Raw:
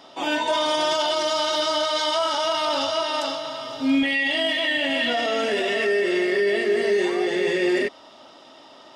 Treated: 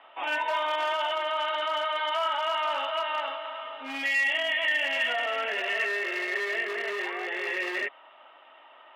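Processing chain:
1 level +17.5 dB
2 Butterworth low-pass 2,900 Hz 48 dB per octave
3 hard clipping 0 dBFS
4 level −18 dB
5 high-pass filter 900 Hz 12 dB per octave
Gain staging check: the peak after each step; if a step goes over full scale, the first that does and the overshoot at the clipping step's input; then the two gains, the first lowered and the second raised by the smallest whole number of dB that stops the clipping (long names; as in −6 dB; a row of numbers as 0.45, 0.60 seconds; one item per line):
+5.5, +5.5, 0.0, −18.0, −16.0 dBFS
step 1, 5.5 dB
step 1 +11.5 dB, step 4 −12 dB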